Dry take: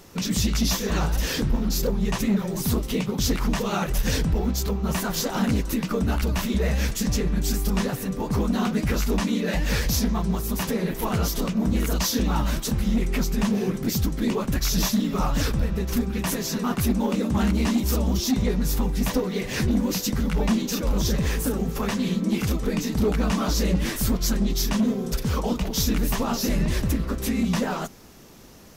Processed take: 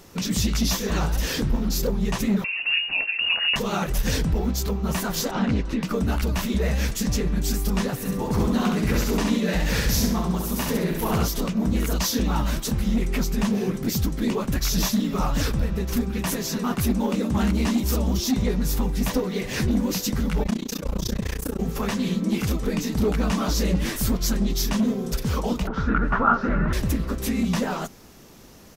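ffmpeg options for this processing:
-filter_complex "[0:a]asettb=1/sr,asplit=3[s0][s1][s2];[s0]atrim=end=2.444[s3];[s1]atrim=start=2.44:end=3.56,asetpts=PTS-STARTPTS,afade=t=in:d=0.004:c=qsin,afade=t=out:st=1.116:d=0.004:c=qsin,lowpass=f=2500:t=q:w=0.5098,lowpass=f=2500:t=q:w=0.6013,lowpass=f=2500:t=q:w=0.9,lowpass=f=2500:t=q:w=2.563,afreqshift=-2900[s4];[s2]atrim=start=3.556[s5];[s3][s4]acrossfade=d=0.004:c1=hsin:c2=qsin[s6];[s6][s5]acrossfade=d=0.004:c1=qsin:c2=hsin,asettb=1/sr,asplit=3[s7][s8][s9];[s7]atrim=end=5.314[s10];[s8]atrim=start=5.31:end=5.83,asetpts=PTS-STARTPTS,afade=t=in:d=0.004:c=qsin,afade=t=out:st=0.516:d=0.004:c=qsin,lowpass=3800[s11];[s9]atrim=start=5.826[s12];[s10][s11]acrossfade=d=0.004:c1=hsin:c2=qsin[s13];[s13][s12]acrossfade=d=0.004:c1=qsin:c2=hsin,asplit=3[s14][s15][s16];[s14]afade=t=out:st=8.04:d=0.02[s17];[s15]aecho=1:1:67|134|201|268|335:0.668|0.241|0.0866|0.0312|0.0112,afade=t=in:st=8.04:d=0.02,afade=t=out:st=11.24:d=0.02[s18];[s16]afade=t=in:st=11.24:d=0.02[s19];[s17][s18][s19]amix=inputs=3:normalize=0,asettb=1/sr,asplit=3[s20][s21][s22];[s20]atrim=end=20.434[s23];[s21]atrim=start=20.43:end=21.6,asetpts=PTS-STARTPTS,afade=t=in:d=0.004:c=qsin,afade=t=out:st=1.166:d=0.004:c=qsin,tremolo=f=30:d=0.974[s24];[s22]atrim=start=21.596[s25];[s23][s24]acrossfade=d=0.004:c1=hsin:c2=qsin[s26];[s26][s25]acrossfade=d=0.004:c1=qsin:c2=hsin,asettb=1/sr,asplit=3[s27][s28][s29];[s27]atrim=end=25.674[s30];[s28]atrim=start=25.67:end=26.73,asetpts=PTS-STARTPTS,afade=t=in:d=0.004:c=qsin,afade=t=out:st=1.056:d=0.004:c=qsin,lowpass=f=1400:t=q:w=12[s31];[s29]atrim=start=26.726[s32];[s30][s31]acrossfade=d=0.004:c1=hsin:c2=qsin[s33];[s33][s32]acrossfade=d=0.004:c1=qsin:c2=hsin"

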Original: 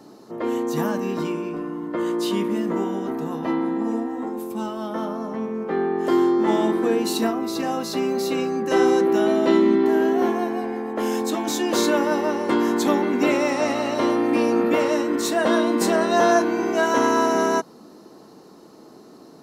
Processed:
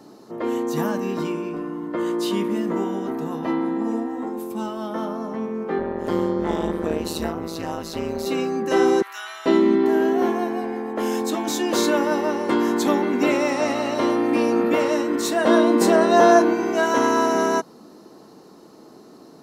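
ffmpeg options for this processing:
-filter_complex "[0:a]asplit=3[s0][s1][s2];[s0]afade=t=out:st=5.78:d=0.02[s3];[s1]tremolo=f=160:d=0.974,afade=t=in:st=5.78:d=0.02,afade=t=out:st=8.25:d=0.02[s4];[s2]afade=t=in:st=8.25:d=0.02[s5];[s3][s4][s5]amix=inputs=3:normalize=0,asettb=1/sr,asplit=3[s6][s7][s8];[s6]atrim=end=9.024[s9];[s7]atrim=start=9.02:end=9.46,asetpts=PTS-STARTPTS,afade=t=in:d=0.004:c=qsin,afade=t=out:st=0.436:d=0.004:c=qsin,highpass=f=1200:w=0.5412,highpass=f=1200:w=1.3066[s10];[s8]atrim=start=9.456[s11];[s9][s10]acrossfade=d=0.004:c1=hsin:c2=qsin[s12];[s12][s11]acrossfade=d=0.004:c1=qsin:c2=hsin,asettb=1/sr,asplit=3[s13][s14][s15];[s13]atrim=end=15.474[s16];[s14]atrim=start=15.47:end=16.54,asetpts=PTS-STARTPTS,afade=t=in:d=0.004:c=qsin,afade=t=out:st=1.066:d=0.004:c=qsin,equalizer=f=460:t=o:w=2.6:g=4.5[s17];[s15]atrim=start=16.536[s18];[s16][s17]acrossfade=d=0.004:c1=hsin:c2=qsin[s19];[s19][s18]acrossfade=d=0.004:c1=qsin:c2=hsin"

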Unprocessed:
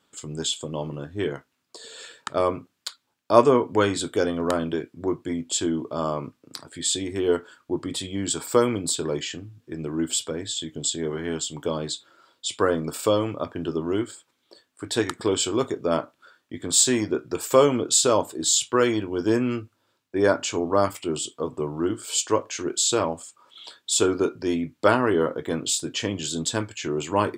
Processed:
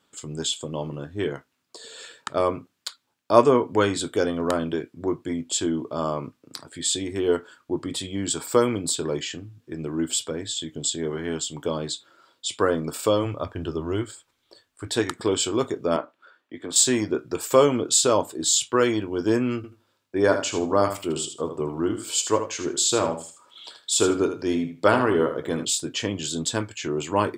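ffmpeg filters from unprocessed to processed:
-filter_complex "[0:a]asplit=3[s0][s1][s2];[s0]afade=t=out:st=13.24:d=0.02[s3];[s1]asubboost=boost=6:cutoff=79,afade=t=in:st=13.24:d=0.02,afade=t=out:st=14.86:d=0.02[s4];[s2]afade=t=in:st=14.86:d=0.02[s5];[s3][s4][s5]amix=inputs=3:normalize=0,asettb=1/sr,asplit=3[s6][s7][s8];[s6]atrim=end=15.964[s9];[s7]atrim=start=15.96:end=16.76,asetpts=PTS-STARTPTS,afade=t=in:d=0.004:c=qsin,afade=t=out:st=0.796:d=0.004:c=qsin,acrossover=split=250 3500:gain=0.251 1 0.251[s10][s11][s12];[s10][s11][s12]amix=inputs=3:normalize=0[s13];[s8]atrim=start=16.756[s14];[s9][s13]acrossfade=d=0.004:c1=hsin:c2=qsin[s15];[s15][s14]acrossfade=d=0.004:c1=qsin:c2=hsin,asettb=1/sr,asplit=3[s16][s17][s18];[s16]atrim=end=19.564[s19];[s17]atrim=start=19.56:end=25.65,asetpts=PTS-STARTPTS,afade=t=in:d=0.004:c=qsin,afade=t=out:st=6.086:d=0.004:c=qsin,aecho=1:1:78|156|234:0.355|0.0639|0.0115,atrim=end_sample=268569[s20];[s18]atrim=start=25.646[s21];[s19][s20]acrossfade=d=0.004:c1=hsin:c2=qsin[s22];[s22][s21]acrossfade=d=0.004:c1=qsin:c2=hsin"

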